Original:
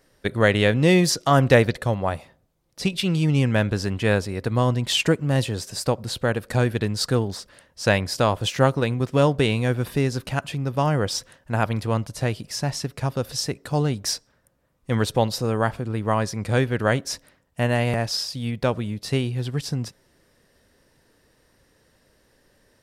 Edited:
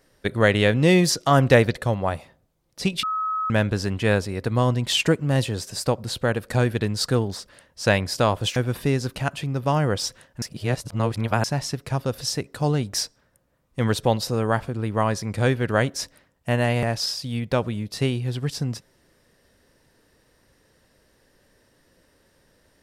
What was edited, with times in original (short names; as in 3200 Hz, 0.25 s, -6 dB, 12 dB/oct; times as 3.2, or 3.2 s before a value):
3.03–3.5 bleep 1280 Hz -22.5 dBFS
8.56–9.67 cut
11.53–12.55 reverse